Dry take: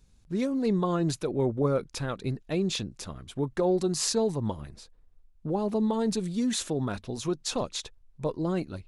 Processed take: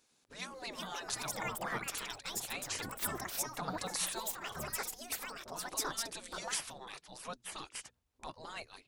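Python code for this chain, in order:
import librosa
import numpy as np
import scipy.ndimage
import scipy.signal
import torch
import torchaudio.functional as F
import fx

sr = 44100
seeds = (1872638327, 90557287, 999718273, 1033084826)

y = fx.echo_pitch(x, sr, ms=502, semitones=6, count=2, db_per_echo=-3.0)
y = fx.low_shelf(y, sr, hz=260.0, db=-9.0)
y = fx.hum_notches(y, sr, base_hz=60, count=4)
y = fx.spec_gate(y, sr, threshold_db=-15, keep='weak')
y = F.gain(torch.from_numpy(y), 1.0).numpy()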